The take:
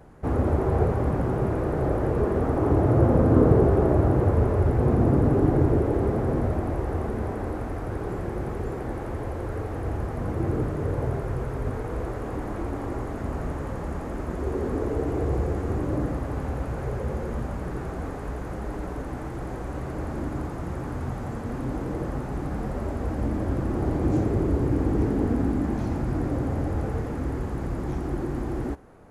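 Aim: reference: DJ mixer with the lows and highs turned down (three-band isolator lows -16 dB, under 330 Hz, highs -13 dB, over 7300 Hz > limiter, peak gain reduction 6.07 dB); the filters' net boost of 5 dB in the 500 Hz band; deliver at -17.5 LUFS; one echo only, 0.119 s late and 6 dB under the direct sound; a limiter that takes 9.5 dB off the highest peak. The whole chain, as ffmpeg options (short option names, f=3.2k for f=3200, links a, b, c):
-filter_complex "[0:a]equalizer=f=500:t=o:g=8.5,alimiter=limit=-10.5dB:level=0:latency=1,acrossover=split=330 7300:gain=0.158 1 0.224[a][b][c];[a][b][c]amix=inputs=3:normalize=0,aecho=1:1:119:0.501,volume=10.5dB,alimiter=limit=-6dB:level=0:latency=1"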